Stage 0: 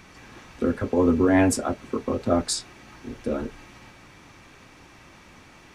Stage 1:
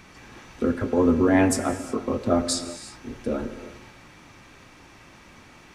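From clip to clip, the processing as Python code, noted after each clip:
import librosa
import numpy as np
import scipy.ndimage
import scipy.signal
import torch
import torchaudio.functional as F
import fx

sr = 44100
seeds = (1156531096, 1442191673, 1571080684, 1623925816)

y = fx.rev_gated(x, sr, seeds[0], gate_ms=390, shape='flat', drr_db=10.0)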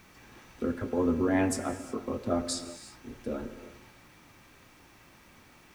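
y = fx.quant_dither(x, sr, seeds[1], bits=10, dither='triangular')
y = y * librosa.db_to_amplitude(-7.5)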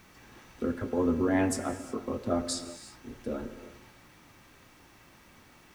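y = fx.notch(x, sr, hz=2400.0, q=24.0)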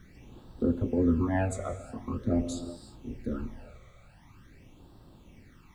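y = fx.tilt_eq(x, sr, slope=-2.0)
y = fx.phaser_stages(y, sr, stages=12, low_hz=280.0, high_hz=2200.0, hz=0.45, feedback_pct=25)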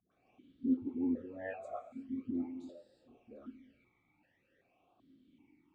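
y = fx.dispersion(x, sr, late='highs', ms=118.0, hz=560.0)
y = fx.vowel_held(y, sr, hz=2.6)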